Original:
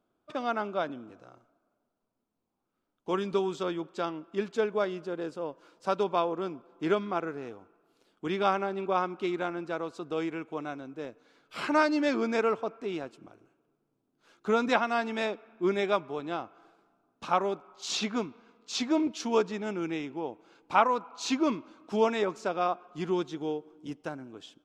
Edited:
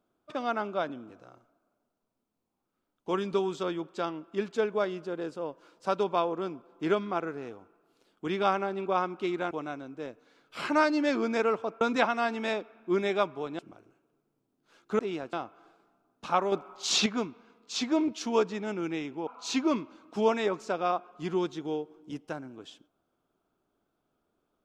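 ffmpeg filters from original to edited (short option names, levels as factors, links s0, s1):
-filter_complex "[0:a]asplit=9[s0][s1][s2][s3][s4][s5][s6][s7][s8];[s0]atrim=end=9.512[s9];[s1]atrim=start=10.498:end=12.802[s10];[s2]atrim=start=14.538:end=16.322[s11];[s3]atrim=start=13.138:end=14.542[s12];[s4]atrim=start=12.798:end=13.142[s13];[s5]atrim=start=16.318:end=17.512[s14];[s6]atrim=start=17.508:end=18.052,asetpts=PTS-STARTPTS,volume=2[s15];[s7]atrim=start=18.048:end=20.262[s16];[s8]atrim=start=21.028[s17];[s9][s10]acrossfade=d=0.004:c1=hsin:c2=hsin[s18];[s18][s11]acrossfade=d=0.004:c1=hsin:c2=hsin[s19];[s19][s12]acrossfade=d=0.004:c1=hsin:c2=hsin[s20];[s20][s13]acrossfade=d=0.004:c1=hsin:c2=hsin[s21];[s21][s14]acrossfade=d=0.004:c1=hsin:c2=hsin[s22];[s22][s15]acrossfade=d=0.004:c1=hsin:c2=hsin[s23];[s23][s16]acrossfade=d=0.004:c1=hsin:c2=hsin[s24];[s24][s17]acrossfade=d=0.004:c1=hsin:c2=hsin"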